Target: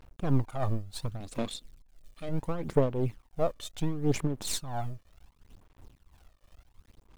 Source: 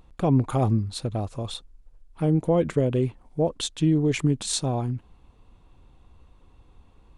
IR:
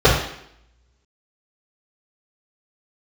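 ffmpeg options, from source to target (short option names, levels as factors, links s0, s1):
-filter_complex "[0:a]aeval=exprs='if(lt(val(0),0),0.251*val(0),val(0))':c=same,asettb=1/sr,asplit=3[s0][s1][s2];[s0]atrim=end=1.204[s3];[s1]atrim=start=1.2:end=2.29,asetpts=PTS-STARTPTS,afade=t=in:d=0.004:c=qsin,afade=t=out:st=1.086:d=0.004:c=qsin,equalizer=f=125:t=o:w=1:g=-11,equalizer=f=250:t=o:w=1:g=10,equalizer=f=1000:t=o:w=1:g=-5,equalizer=f=2000:t=o:w=1:g=8,equalizer=f=4000:t=o:w=1:g=10,equalizer=f=8000:t=o:w=1:g=9[s4];[s2]atrim=start=2.286[s5];[s3][s4]acrossfade=d=0.004:c1=hsin:c2=qsin[s6];[s6][s5]acrossfade=d=0.004:c1=qsin:c2=hsin,acrusher=bits=9:mix=0:aa=0.000001,aphaser=in_gain=1:out_gain=1:delay=1.7:decay=0.55:speed=0.7:type=sinusoidal,tremolo=f=2.9:d=0.66,volume=0.708"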